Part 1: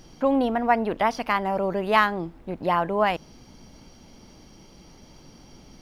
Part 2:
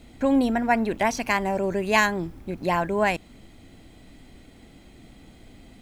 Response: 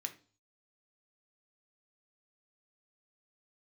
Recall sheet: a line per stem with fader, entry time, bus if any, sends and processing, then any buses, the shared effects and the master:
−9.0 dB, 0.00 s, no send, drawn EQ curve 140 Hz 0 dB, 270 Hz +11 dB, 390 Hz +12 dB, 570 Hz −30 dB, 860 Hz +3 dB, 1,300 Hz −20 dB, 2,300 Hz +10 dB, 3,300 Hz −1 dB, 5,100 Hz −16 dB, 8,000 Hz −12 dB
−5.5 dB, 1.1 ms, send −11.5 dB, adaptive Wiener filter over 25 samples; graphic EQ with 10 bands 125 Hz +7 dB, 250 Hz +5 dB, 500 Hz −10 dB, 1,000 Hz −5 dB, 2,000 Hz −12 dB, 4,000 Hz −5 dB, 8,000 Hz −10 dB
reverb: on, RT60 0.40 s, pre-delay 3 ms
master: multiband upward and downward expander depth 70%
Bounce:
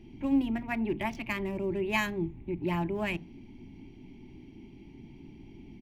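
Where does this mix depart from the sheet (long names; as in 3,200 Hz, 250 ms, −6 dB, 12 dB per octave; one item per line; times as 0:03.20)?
stem 2: send −11.5 dB → −5 dB
master: missing multiband upward and downward expander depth 70%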